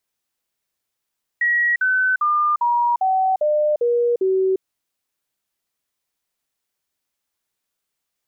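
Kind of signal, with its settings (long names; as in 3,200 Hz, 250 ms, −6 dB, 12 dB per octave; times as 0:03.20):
stepped sweep 1,910 Hz down, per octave 3, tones 8, 0.35 s, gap 0.05 s −15 dBFS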